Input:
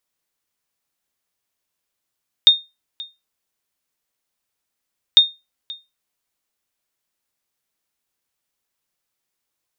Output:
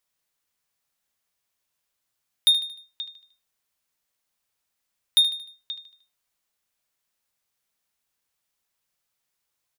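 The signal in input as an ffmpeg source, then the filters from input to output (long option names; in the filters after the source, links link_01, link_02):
-f lavfi -i "aevalsrc='0.841*(sin(2*PI*3670*mod(t,2.7))*exp(-6.91*mod(t,2.7)/0.23)+0.075*sin(2*PI*3670*max(mod(t,2.7)-0.53,0))*exp(-6.91*max(mod(t,2.7)-0.53,0)/0.23))':duration=5.4:sample_rate=44100"
-af "equalizer=frequency=330:width=1.3:gain=-4.5,asoftclip=type=tanh:threshold=-13dB,aecho=1:1:76|152|228|304:0.224|0.0985|0.0433|0.0191"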